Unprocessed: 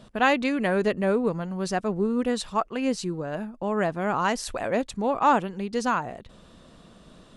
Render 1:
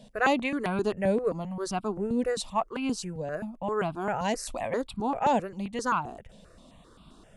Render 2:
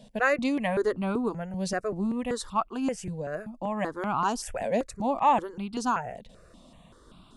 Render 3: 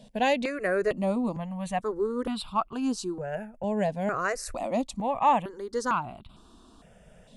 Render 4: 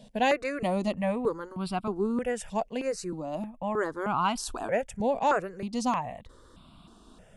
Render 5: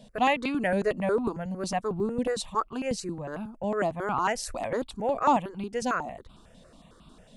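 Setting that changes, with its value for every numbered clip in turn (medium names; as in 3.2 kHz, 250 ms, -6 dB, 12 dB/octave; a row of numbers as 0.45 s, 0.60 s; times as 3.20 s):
stepped phaser, rate: 7.6 Hz, 5.2 Hz, 2.2 Hz, 3.2 Hz, 11 Hz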